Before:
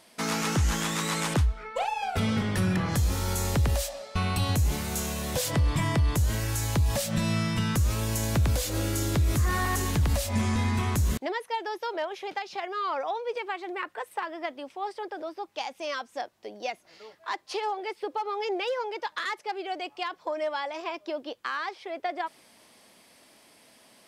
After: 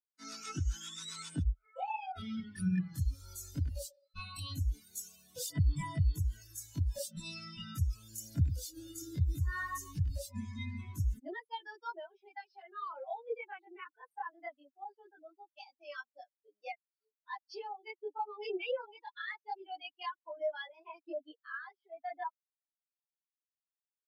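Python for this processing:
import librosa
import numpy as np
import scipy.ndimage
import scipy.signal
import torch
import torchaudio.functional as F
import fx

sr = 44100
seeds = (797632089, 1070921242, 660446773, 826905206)

y = fx.bin_expand(x, sr, power=3.0)
y = fx.chorus_voices(y, sr, voices=2, hz=0.18, base_ms=22, depth_ms=2.2, mix_pct=60)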